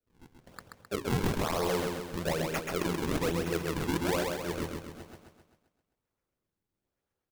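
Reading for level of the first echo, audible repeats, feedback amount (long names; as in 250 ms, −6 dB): −3.5 dB, 6, 52%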